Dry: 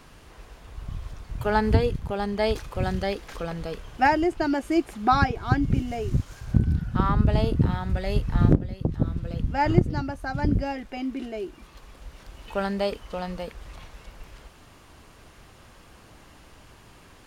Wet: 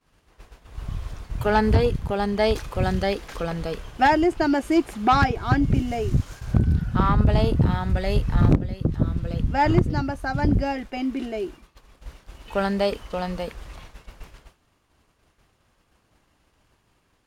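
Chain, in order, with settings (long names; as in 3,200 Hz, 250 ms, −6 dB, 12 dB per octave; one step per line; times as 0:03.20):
harmonic generator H 5 −16 dB, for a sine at −5 dBFS
downward expander −33 dBFS
level −1 dB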